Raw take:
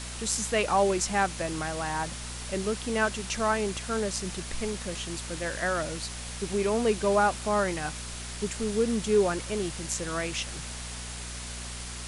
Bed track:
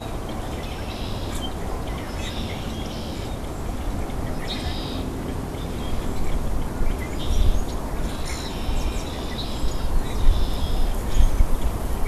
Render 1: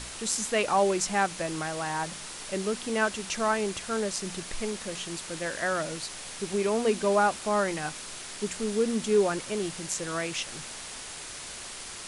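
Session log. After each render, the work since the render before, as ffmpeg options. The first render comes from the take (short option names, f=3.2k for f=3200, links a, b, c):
-af "bandreject=f=60:t=h:w=4,bandreject=f=120:t=h:w=4,bandreject=f=180:t=h:w=4,bandreject=f=240:t=h:w=4"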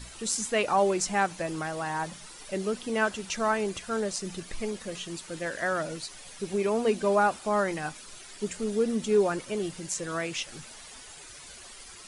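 -af "afftdn=nr=11:nf=-41"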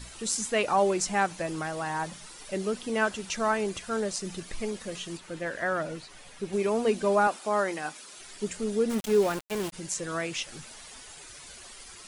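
-filter_complex "[0:a]asettb=1/sr,asplit=3[a][b][c];[a]atrim=end=5.174[d];[b]atrim=start=5.17:end=6.53,asetpts=PTS-STARTPTS,afade=t=in:d=0.004:c=qsin,afade=t=out:st=1.356:d=0.004:c=qsin,acrossover=split=3200[e][f];[f]acompressor=threshold=-52dB:ratio=4:attack=1:release=60[g];[e][g]amix=inputs=2:normalize=0[h];[c]atrim=start=6.526[i];[d][h]acrossfade=d=0.004:c1=hsin:c2=qsin[j];[j][i]acrossfade=d=0.004:c1=qsin:c2=hsin,asettb=1/sr,asplit=3[k][l][m];[k]atrim=end=7.274[n];[l]atrim=start=7.27:end=8.19,asetpts=PTS-STARTPTS,afade=t=in:d=0.004:c=qsin,afade=t=out:st=0.916:d=0.004:c=qsin,highpass=250[o];[m]atrim=start=8.186[p];[n][o]acrossfade=d=0.004:c1=hsin:c2=qsin[q];[q][p]acrossfade=d=0.004:c1=qsin:c2=hsin,asplit=3[r][s][t];[r]afade=t=out:st=8.89:d=0.02[u];[s]aeval=exprs='val(0)*gte(abs(val(0)),0.0251)':c=same,afade=t=in:st=8.89:d=0.02,afade=t=out:st=9.72:d=0.02[v];[t]afade=t=in:st=9.72:d=0.02[w];[u][v][w]amix=inputs=3:normalize=0"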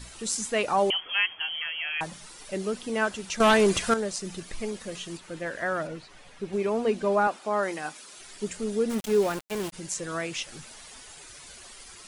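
-filter_complex "[0:a]asettb=1/sr,asplit=3[a][b][c];[a]atrim=end=0.904[d];[b]atrim=start=0.9:end=2.01,asetpts=PTS-STARTPTS,afade=t=in:d=0.004:c=qsin,afade=t=out:st=1.106:d=0.004:c=qsin,lowpass=f=2.9k:t=q:w=0.5098,lowpass=f=2.9k:t=q:w=0.6013,lowpass=f=2.9k:t=q:w=0.9,lowpass=f=2.9k:t=q:w=2.563,afreqshift=-3400[e];[c]atrim=start=2.006[f];[d][e]acrossfade=d=0.004:c1=hsin:c2=qsin[g];[g][f]acrossfade=d=0.004:c1=qsin:c2=hsin,asettb=1/sr,asplit=3[h][i][j];[h]atrim=end=3.404[k];[i]atrim=start=3.4:end=3.94,asetpts=PTS-STARTPTS,afade=t=in:d=0.004:c=qsin,afade=t=out:st=0.536:d=0.004:c=qsin,aeval=exprs='0.188*sin(PI/2*2.24*val(0)/0.188)':c=same[l];[j]atrim=start=3.936[m];[k][l]acrossfade=d=0.004:c1=hsin:c2=qsin[n];[n][m]acrossfade=d=0.004:c1=qsin:c2=hsin,asettb=1/sr,asplit=3[o][p][q];[o]atrim=end=5.874[r];[p]atrim=start=5.87:end=7.63,asetpts=PTS-STARTPTS,afade=t=in:d=0.004:c=qsin,afade=t=out:st=1.756:d=0.004:c=qsin,lowpass=f=3.8k:p=1[s];[q]atrim=start=7.626[t];[r][s]acrossfade=d=0.004:c1=hsin:c2=qsin[u];[u][t]acrossfade=d=0.004:c1=qsin:c2=hsin"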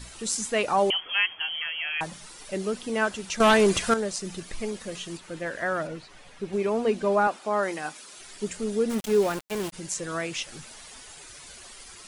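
-af "volume=1dB"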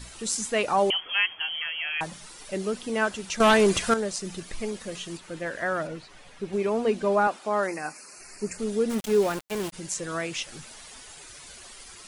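-filter_complex "[0:a]asplit=3[a][b][c];[a]afade=t=out:st=7.66:d=0.02[d];[b]asuperstop=centerf=3400:order=8:qfactor=2.2,afade=t=in:st=7.66:d=0.02,afade=t=out:st=8.57:d=0.02[e];[c]afade=t=in:st=8.57:d=0.02[f];[d][e][f]amix=inputs=3:normalize=0"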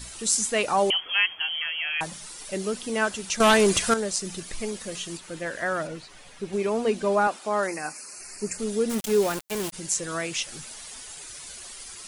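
-af "highshelf=f=4.7k:g=8"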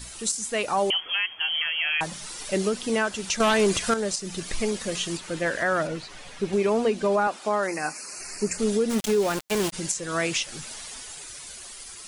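-filter_complex "[0:a]acrossover=split=7800[a][b];[a]dynaudnorm=f=130:g=21:m=6dB[c];[c][b]amix=inputs=2:normalize=0,alimiter=limit=-14.5dB:level=0:latency=1:release=329"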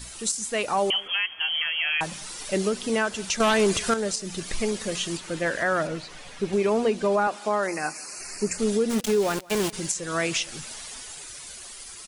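-af "aecho=1:1:174:0.0631"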